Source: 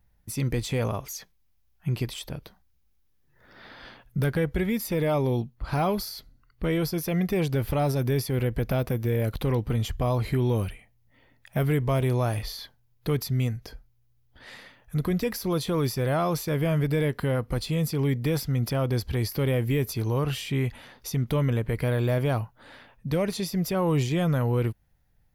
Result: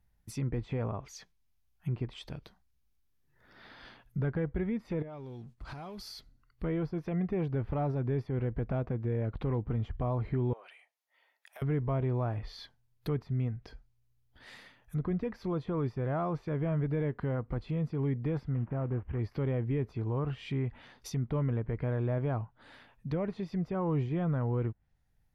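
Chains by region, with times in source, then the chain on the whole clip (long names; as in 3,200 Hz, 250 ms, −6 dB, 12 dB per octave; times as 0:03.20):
0:05.02–0:06.12: mu-law and A-law mismatch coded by mu + downward expander −47 dBFS + downward compressor 16 to 1, threshold −33 dBFS
0:10.53–0:11.62: high-pass filter 580 Hz 24 dB per octave + downward compressor 4 to 1, threshold −40 dBFS
0:18.54–0:19.19: variable-slope delta modulation 16 kbit/s + high-frequency loss of the air 400 metres
whole clip: treble cut that deepens with the level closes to 1,400 Hz, closed at −24.5 dBFS; parametric band 540 Hz −3.5 dB 0.34 octaves; level −6 dB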